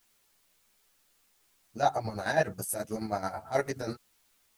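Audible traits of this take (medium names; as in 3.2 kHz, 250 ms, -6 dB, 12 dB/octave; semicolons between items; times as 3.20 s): chopped level 9.3 Hz, depth 60%, duty 45%; a quantiser's noise floor 12-bit, dither triangular; a shimmering, thickened sound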